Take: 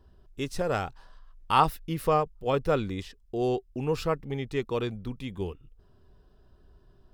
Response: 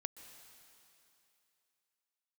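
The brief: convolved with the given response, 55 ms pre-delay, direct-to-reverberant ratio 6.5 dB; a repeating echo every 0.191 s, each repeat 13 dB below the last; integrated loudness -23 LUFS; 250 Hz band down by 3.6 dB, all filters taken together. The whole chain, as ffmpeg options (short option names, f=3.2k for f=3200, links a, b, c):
-filter_complex "[0:a]equalizer=f=250:t=o:g=-5.5,aecho=1:1:191|382|573:0.224|0.0493|0.0108,asplit=2[a][b];[1:a]atrim=start_sample=2205,adelay=55[c];[b][c]afir=irnorm=-1:irlink=0,volume=-3.5dB[d];[a][d]amix=inputs=2:normalize=0,volume=6.5dB"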